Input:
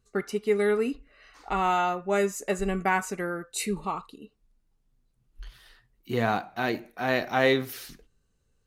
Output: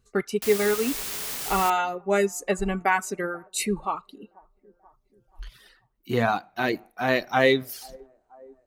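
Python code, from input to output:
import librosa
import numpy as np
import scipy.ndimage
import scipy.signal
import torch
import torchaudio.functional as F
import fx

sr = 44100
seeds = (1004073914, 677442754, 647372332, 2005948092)

y = fx.echo_wet_bandpass(x, sr, ms=484, feedback_pct=44, hz=510.0, wet_db=-19)
y = fx.dereverb_blind(y, sr, rt60_s=1.4)
y = fx.quant_dither(y, sr, seeds[0], bits=6, dither='triangular', at=(0.42, 1.7))
y = y * librosa.db_to_amplitude(3.5)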